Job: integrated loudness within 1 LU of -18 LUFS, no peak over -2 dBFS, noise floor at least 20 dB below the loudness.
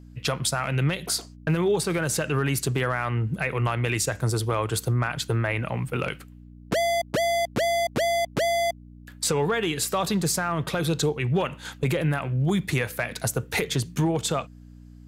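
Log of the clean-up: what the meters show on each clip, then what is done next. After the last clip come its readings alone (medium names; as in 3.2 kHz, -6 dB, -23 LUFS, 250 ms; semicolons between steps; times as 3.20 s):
hum 60 Hz; highest harmonic 300 Hz; hum level -46 dBFS; loudness -25.5 LUFS; peak level -13.5 dBFS; loudness target -18.0 LUFS
-> de-hum 60 Hz, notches 5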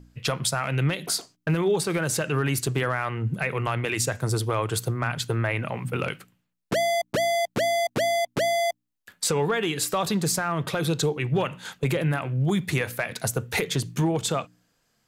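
hum not found; loudness -26.0 LUFS; peak level -12.5 dBFS; loudness target -18.0 LUFS
-> trim +8 dB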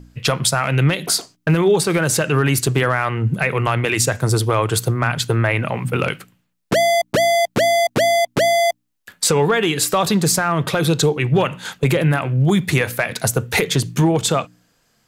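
loudness -18.0 LUFS; peak level -4.5 dBFS; noise floor -67 dBFS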